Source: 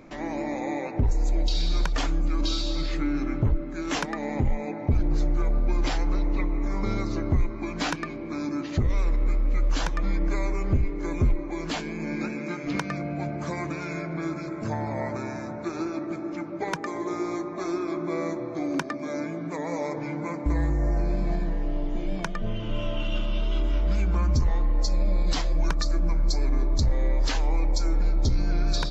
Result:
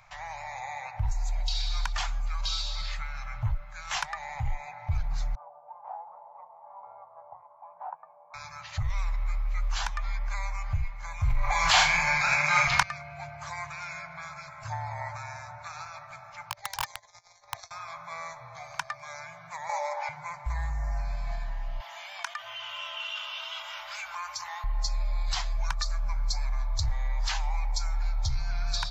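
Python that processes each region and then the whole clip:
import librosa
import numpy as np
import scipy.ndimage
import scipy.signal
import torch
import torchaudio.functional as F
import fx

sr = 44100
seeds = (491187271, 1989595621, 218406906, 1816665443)

y = fx.chain(x, sr, fx.ellip_bandpass(low_hz=280.0, high_hz=910.0, order=3, stop_db=80),
    fx.doubler(ms=12.0, db=-10.5), at=(5.35, 8.34))
y = fx.chain(y, sr, fx.room_flutter(wall_m=6.8, rt60_s=0.38),
    fx.env_flatten(amount_pct=100), at=(11.23, 12.83))
y = fx.chain(y, sr, fx.curve_eq(hz=(100.0, 160.0, 250.0, 660.0, 1200.0, 1800.0, 2700.0, 4400.0, 6200.0, 10000.0), db=(0, -30, 12, -3, -15, -5, -6, 6, 4, -8)),
    fx.over_compress(threshold_db=-30.0, ratio=-0.5),
    fx.overflow_wrap(gain_db=20.0), at=(16.5, 17.71))
y = fx.chain(y, sr, fx.brickwall_highpass(low_hz=260.0),
    fx.small_body(hz=(360.0, 590.0, 830.0, 2900.0), ring_ms=100, db=13),
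    fx.env_flatten(amount_pct=50), at=(19.69, 20.09))
y = fx.chain(y, sr, fx.highpass(hz=960.0, slope=12),
    fx.env_flatten(amount_pct=50), at=(21.8, 24.64))
y = scipy.signal.sosfilt(scipy.signal.cheby1(3, 1.0, [120.0, 790.0], 'bandstop', fs=sr, output='sos'), y)
y = fx.low_shelf(y, sr, hz=220.0, db=-5.5)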